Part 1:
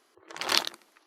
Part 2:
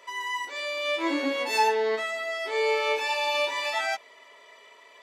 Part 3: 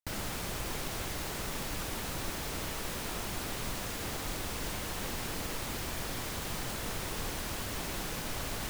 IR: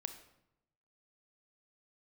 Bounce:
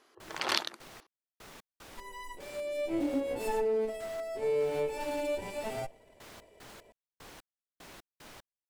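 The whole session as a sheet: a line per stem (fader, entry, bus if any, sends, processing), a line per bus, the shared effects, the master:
+1.5 dB, 0.00 s, no send, none
-1.0 dB, 1.90 s, send -13.5 dB, comb filter that takes the minimum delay 0.38 ms; high-order bell 2.6 kHz -15 dB 2.9 oct
-10.5 dB, 0.00 s, no send, bass shelf 170 Hz -11 dB; trance gate ".x..x..x" 75 bpm -60 dB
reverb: on, RT60 0.85 s, pre-delay 26 ms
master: treble shelf 6.5 kHz -7 dB; compression 2:1, threshold -29 dBFS, peak gain reduction 7 dB

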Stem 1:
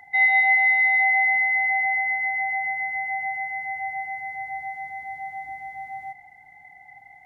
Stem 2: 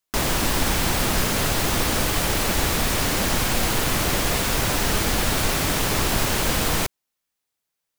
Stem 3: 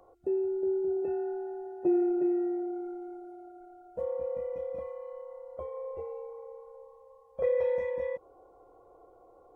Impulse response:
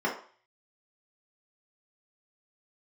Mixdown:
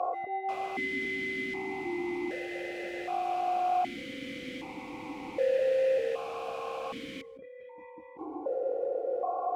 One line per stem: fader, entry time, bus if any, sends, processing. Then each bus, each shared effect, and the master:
-4.0 dB, 0.00 s, no send, none
-5.0 dB, 0.35 s, no send, none
-2.5 dB, 0.00 s, no send, level flattener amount 100%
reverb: none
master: stepped vowel filter 1.3 Hz

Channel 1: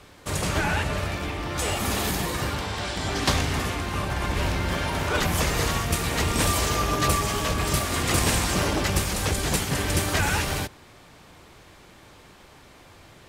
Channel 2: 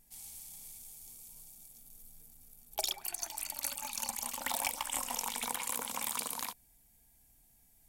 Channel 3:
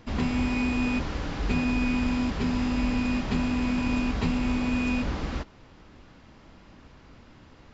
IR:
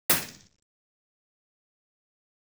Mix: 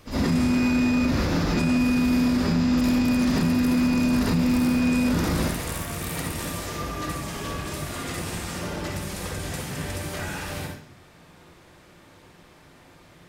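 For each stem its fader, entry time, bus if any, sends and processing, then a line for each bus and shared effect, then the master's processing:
-5.5 dB, 0.00 s, send -15.5 dB, compression, threshold -26 dBFS, peak gain reduction 9 dB
-2.0 dB, 0.00 s, send -15.5 dB, amplifier tone stack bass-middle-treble 10-0-10
-5.0 dB, 0.00 s, send -3.5 dB, resonant high shelf 3.7 kHz +6.5 dB, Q 1.5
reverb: on, RT60 0.45 s, pre-delay 46 ms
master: peak limiter -14.5 dBFS, peak gain reduction 10.5 dB

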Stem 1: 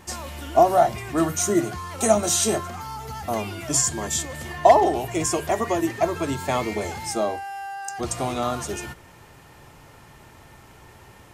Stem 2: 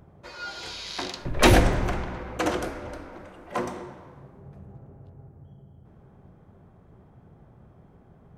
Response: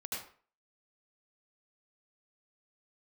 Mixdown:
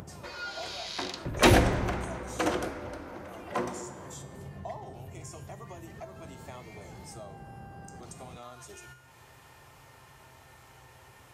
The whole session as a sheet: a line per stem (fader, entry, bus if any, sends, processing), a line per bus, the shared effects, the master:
-17.0 dB, 0.00 s, no send, peaking EQ 230 Hz -7 dB 1.6 oct; feedback comb 130 Hz, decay 0.6 s, harmonics all, mix 70%
-2.5 dB, 0.00 s, no send, none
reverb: none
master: high-pass 55 Hz; upward compressor, threshold -36 dBFS

